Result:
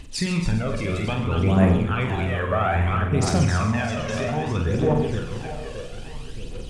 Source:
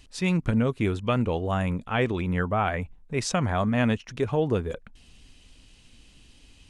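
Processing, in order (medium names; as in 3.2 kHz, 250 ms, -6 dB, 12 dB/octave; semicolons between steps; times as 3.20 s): backward echo that repeats 309 ms, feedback 63%, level -8 dB; in parallel at +2 dB: compression, threshold -31 dBFS, peak gain reduction 12.5 dB; on the sum: peak limiter -16 dBFS, peak gain reduction 8 dB; on a send: two-band feedback delay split 590 Hz, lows 191 ms, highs 132 ms, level -11 dB; on the sum: phaser 0.61 Hz, delay 1.9 ms, feedback 65%; flutter echo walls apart 8 m, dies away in 0.47 s; trim -1.5 dB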